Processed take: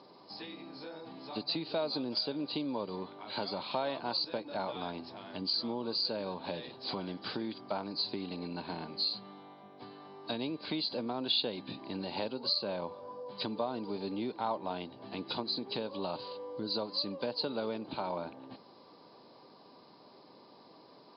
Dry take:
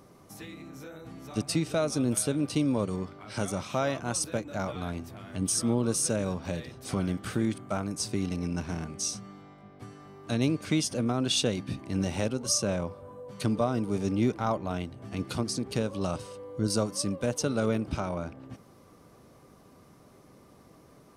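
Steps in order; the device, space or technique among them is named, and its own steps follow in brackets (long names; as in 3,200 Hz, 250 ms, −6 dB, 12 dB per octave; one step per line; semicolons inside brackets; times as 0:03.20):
hearing aid with frequency lowering (hearing-aid frequency compression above 3,800 Hz 4 to 1; downward compressor 3 to 1, threshold −31 dBFS, peak gain reduction 9 dB; loudspeaker in its box 270–5,400 Hz, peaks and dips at 920 Hz +9 dB, 1,300 Hz −6 dB, 2,000 Hz −5 dB, 3,500 Hz +5 dB)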